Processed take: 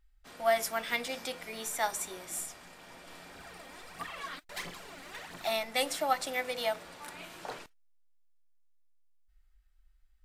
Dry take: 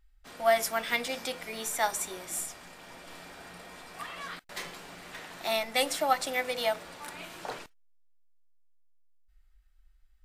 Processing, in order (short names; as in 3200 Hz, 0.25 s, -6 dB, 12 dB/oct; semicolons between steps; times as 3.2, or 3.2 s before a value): 3.35–5.5 phaser 1.5 Hz, delay 3.9 ms, feedback 55%; gain -3 dB